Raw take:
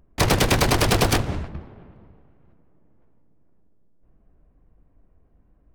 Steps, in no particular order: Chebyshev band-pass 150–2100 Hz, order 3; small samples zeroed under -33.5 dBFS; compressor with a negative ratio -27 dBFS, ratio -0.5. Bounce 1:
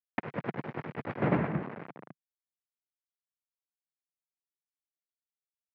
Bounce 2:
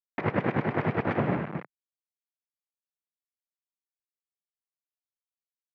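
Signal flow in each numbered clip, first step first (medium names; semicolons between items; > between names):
compressor with a negative ratio > small samples zeroed > Chebyshev band-pass; small samples zeroed > Chebyshev band-pass > compressor with a negative ratio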